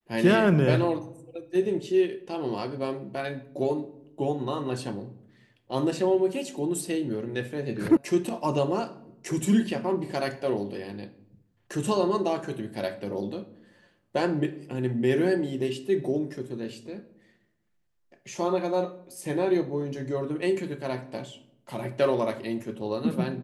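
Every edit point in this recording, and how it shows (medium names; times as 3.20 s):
7.97 s: sound stops dead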